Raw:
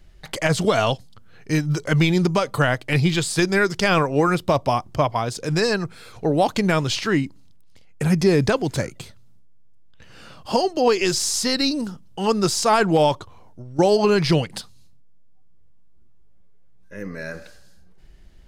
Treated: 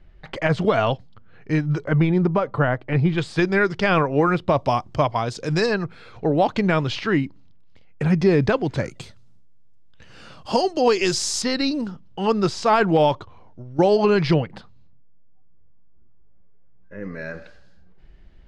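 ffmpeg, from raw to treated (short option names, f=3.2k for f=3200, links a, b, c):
-af "asetnsamples=n=441:p=0,asendcmd='1.85 lowpass f 1500;3.18 lowpass f 2900;4.58 lowpass f 5500;5.66 lowpass f 3200;8.85 lowpass f 7500;11.42 lowpass f 3500;14.34 lowpass f 1800;17.03 lowpass f 3200',lowpass=2.5k"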